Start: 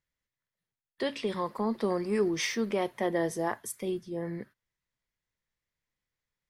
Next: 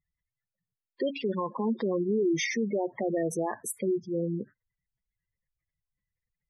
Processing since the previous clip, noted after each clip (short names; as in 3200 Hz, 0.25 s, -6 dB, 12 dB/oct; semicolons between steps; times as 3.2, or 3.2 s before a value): spectral gate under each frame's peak -10 dB strong; limiter -26 dBFS, peak gain reduction 7 dB; gain +5.5 dB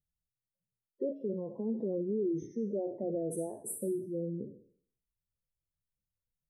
spectral trails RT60 0.54 s; elliptic band-stop 600–8800 Hz, stop band 40 dB; gain -5.5 dB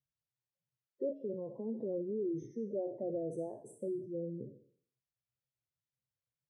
speaker cabinet 100–6300 Hz, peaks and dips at 130 Hz +10 dB, 190 Hz -5 dB, 580 Hz +4 dB; gain -4 dB